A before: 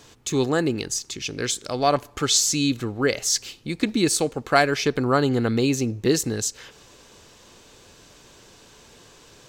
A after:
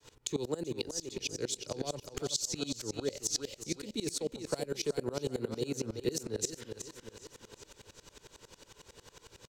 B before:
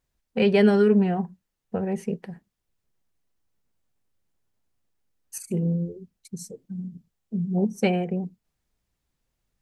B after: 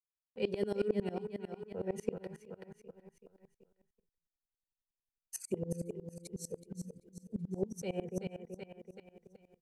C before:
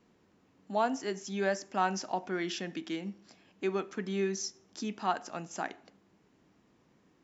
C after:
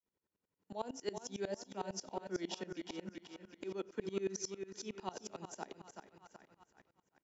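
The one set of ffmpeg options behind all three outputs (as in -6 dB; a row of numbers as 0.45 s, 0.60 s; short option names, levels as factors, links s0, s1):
-filter_complex "[0:a]acrossover=split=210|6600[s0][s1][s2];[s0]acompressor=threshold=0.01:ratio=4[s3];[s1]acompressor=threshold=0.0501:ratio=4[s4];[s2]acompressor=threshold=0.0126:ratio=4[s5];[s3][s4][s5]amix=inputs=3:normalize=0,aecho=1:1:380|760|1140|1520|1900:0.355|0.17|0.0817|0.0392|0.0188,agate=range=0.0224:threshold=0.00178:ratio=3:detection=peak,acrossover=split=170|810|2700[s6][s7][s8][s9];[s8]acompressor=threshold=0.00282:ratio=6[s10];[s6][s7][s10][s9]amix=inputs=4:normalize=0,aecho=1:1:2.1:0.37,aeval=exprs='val(0)*pow(10,-23*if(lt(mod(-11*n/s,1),2*abs(-11)/1000),1-mod(-11*n/s,1)/(2*abs(-11)/1000),(mod(-11*n/s,1)-2*abs(-11)/1000)/(1-2*abs(-11)/1000))/20)':c=same"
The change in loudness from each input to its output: -13.5 LU, -16.0 LU, -9.0 LU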